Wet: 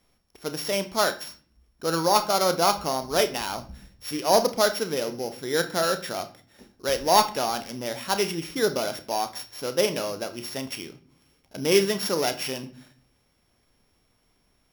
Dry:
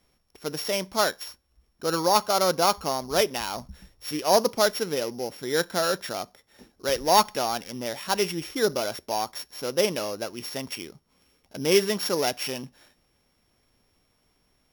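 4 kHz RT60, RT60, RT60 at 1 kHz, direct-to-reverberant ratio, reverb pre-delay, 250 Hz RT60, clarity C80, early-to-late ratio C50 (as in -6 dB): 0.35 s, 0.50 s, 0.45 s, 9.0 dB, 30 ms, 0.90 s, 19.0 dB, 14.5 dB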